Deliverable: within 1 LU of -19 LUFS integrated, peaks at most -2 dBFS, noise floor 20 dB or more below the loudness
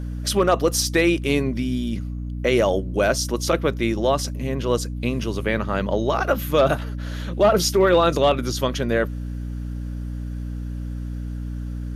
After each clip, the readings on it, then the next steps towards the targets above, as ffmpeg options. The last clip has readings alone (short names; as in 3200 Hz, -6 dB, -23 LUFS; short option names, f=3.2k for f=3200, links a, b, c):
hum 60 Hz; harmonics up to 300 Hz; hum level -26 dBFS; loudness -22.5 LUFS; peak -6.5 dBFS; loudness target -19.0 LUFS
-> -af "bandreject=f=60:t=h:w=6,bandreject=f=120:t=h:w=6,bandreject=f=180:t=h:w=6,bandreject=f=240:t=h:w=6,bandreject=f=300:t=h:w=6"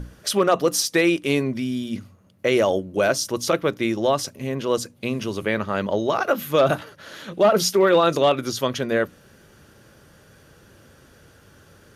hum none; loudness -21.5 LUFS; peak -7.5 dBFS; loudness target -19.0 LUFS
-> -af "volume=2.5dB"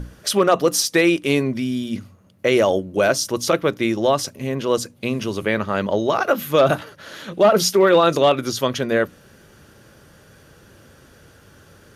loudness -19.0 LUFS; peak -5.0 dBFS; noise floor -50 dBFS